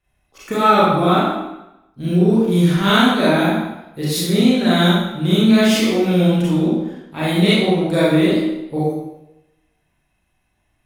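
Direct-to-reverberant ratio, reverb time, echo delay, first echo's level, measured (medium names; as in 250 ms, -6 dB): -9.0 dB, 0.90 s, no echo, no echo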